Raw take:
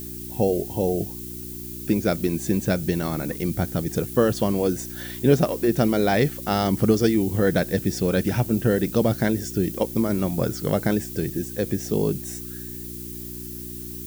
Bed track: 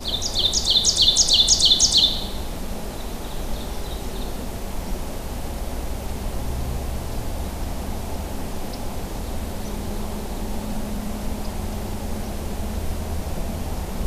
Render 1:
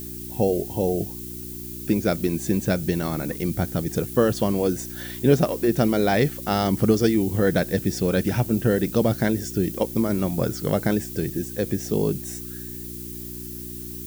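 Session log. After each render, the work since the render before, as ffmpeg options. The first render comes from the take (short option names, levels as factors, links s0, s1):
-af anull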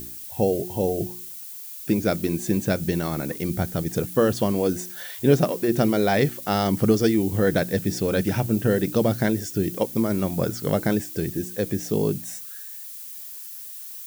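-af "bandreject=f=60:t=h:w=4,bandreject=f=120:t=h:w=4,bandreject=f=180:t=h:w=4,bandreject=f=240:t=h:w=4,bandreject=f=300:t=h:w=4,bandreject=f=360:t=h:w=4"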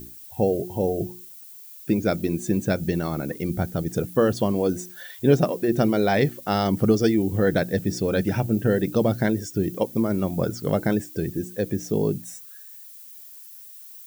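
-af "afftdn=nr=8:nf=-38"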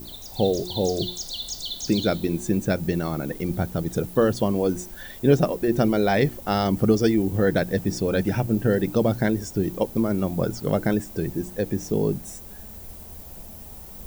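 -filter_complex "[1:a]volume=0.141[s0];[0:a][s0]amix=inputs=2:normalize=0"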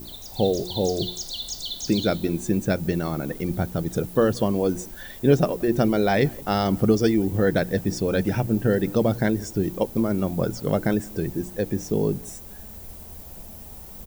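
-filter_complex "[0:a]asplit=2[s0][s1];[s1]adelay=174.9,volume=0.0562,highshelf=f=4000:g=-3.94[s2];[s0][s2]amix=inputs=2:normalize=0"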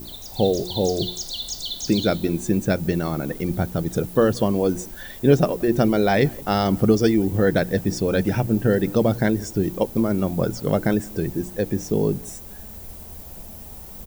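-af "volume=1.26"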